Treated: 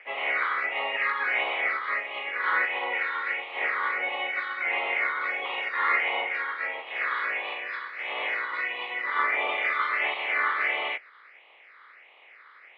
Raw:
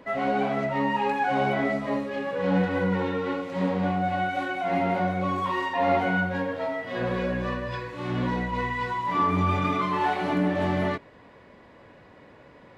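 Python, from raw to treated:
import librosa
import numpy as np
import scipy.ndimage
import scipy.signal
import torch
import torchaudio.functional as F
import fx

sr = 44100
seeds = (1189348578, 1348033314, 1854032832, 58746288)

y = fx.spec_clip(x, sr, under_db=24)
y = fx.phaser_stages(y, sr, stages=6, low_hz=680.0, high_hz=1500.0, hz=1.5, feedback_pct=25)
y = fx.cabinet(y, sr, low_hz=490.0, low_slope=24, high_hz=3000.0, hz=(820.0, 1200.0, 2100.0), db=(5, 9, 9))
y = F.gain(torch.from_numpy(y), -1.5).numpy()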